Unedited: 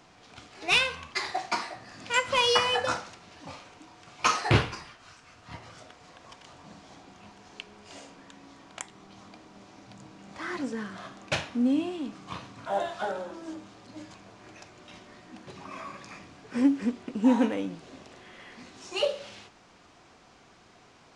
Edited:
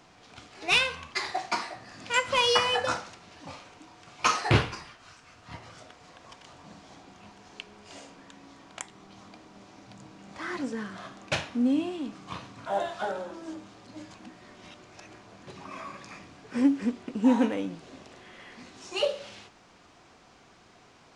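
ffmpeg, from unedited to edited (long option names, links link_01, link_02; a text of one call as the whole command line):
ffmpeg -i in.wav -filter_complex "[0:a]asplit=3[link_01][link_02][link_03];[link_01]atrim=end=14.192[link_04];[link_02]atrim=start=14.188:end=15.432,asetpts=PTS-STARTPTS,areverse[link_05];[link_03]atrim=start=15.428[link_06];[link_04][link_05]acrossfade=duration=0.004:curve1=hsin:curve2=hsin[link_07];[link_07][link_06]acrossfade=duration=0.004:curve1=hsin:curve2=hsin" out.wav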